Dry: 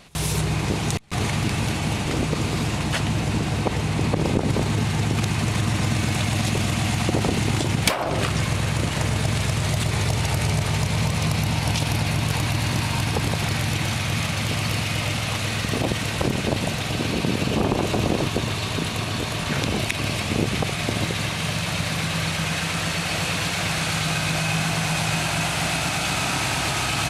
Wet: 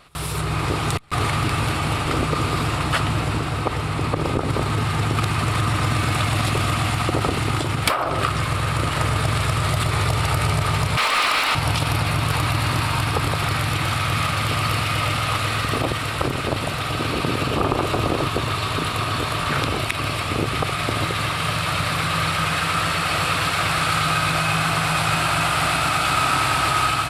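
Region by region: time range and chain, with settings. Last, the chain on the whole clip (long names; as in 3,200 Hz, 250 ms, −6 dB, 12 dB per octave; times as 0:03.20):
0:10.97–0:11.55: Butterworth high-pass 220 Hz 72 dB per octave + tilt shelving filter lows −8.5 dB, about 1,200 Hz + mid-hump overdrive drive 18 dB, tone 1,600 Hz, clips at −8 dBFS
whole clip: thirty-one-band graphic EQ 200 Hz −12 dB, 1,250 Hz +12 dB, 6,300 Hz −10 dB; automatic gain control gain up to 5 dB; level −2.5 dB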